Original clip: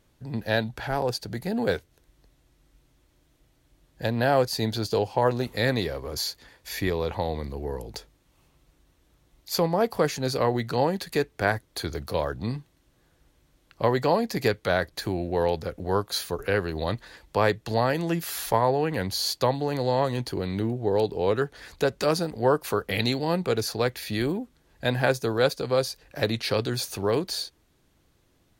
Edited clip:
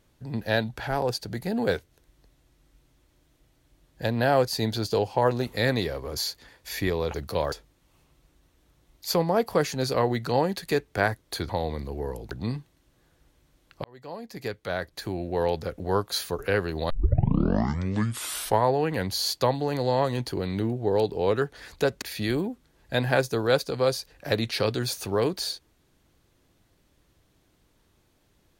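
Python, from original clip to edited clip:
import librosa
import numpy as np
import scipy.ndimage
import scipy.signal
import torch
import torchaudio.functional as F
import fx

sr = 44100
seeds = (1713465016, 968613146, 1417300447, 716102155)

y = fx.edit(x, sr, fx.swap(start_s=7.14, length_s=0.82, other_s=11.93, other_length_s=0.38),
    fx.fade_in_span(start_s=13.84, length_s=1.83),
    fx.tape_start(start_s=16.9, length_s=1.74),
    fx.cut(start_s=22.02, length_s=1.91), tone=tone)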